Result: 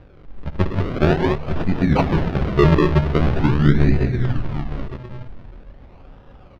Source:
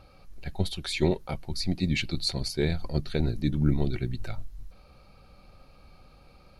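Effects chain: 1.93–3.14 ripple EQ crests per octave 0.77, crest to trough 12 dB; echo 0.906 s -13.5 dB; non-linear reverb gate 0.23 s rising, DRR 1.5 dB; decimation with a swept rate 40×, swing 100% 0.44 Hz; air absorption 290 m; gain +8 dB

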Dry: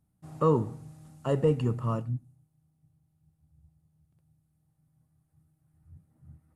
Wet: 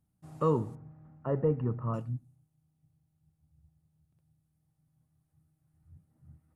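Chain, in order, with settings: 0.75–1.94 LPF 1800 Hz 24 dB/oct; gain -3.5 dB

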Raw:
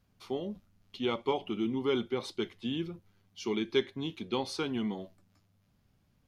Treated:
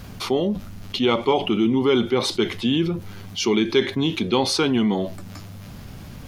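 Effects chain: fast leveller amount 50%; gain +8.5 dB

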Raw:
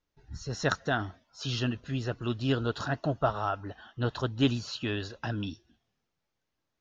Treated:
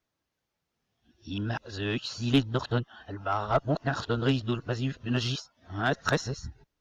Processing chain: whole clip reversed; added harmonics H 2 -15 dB, 5 -21 dB, 7 -25 dB, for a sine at -12.5 dBFS; gain +1 dB

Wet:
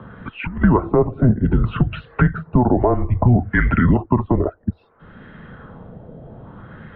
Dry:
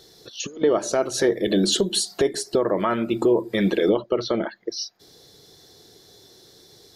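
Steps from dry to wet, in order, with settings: mistuned SSB -250 Hz 200–2900 Hz; LFO low-pass sine 0.61 Hz 630–1800 Hz; three-band squash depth 40%; gain +5.5 dB

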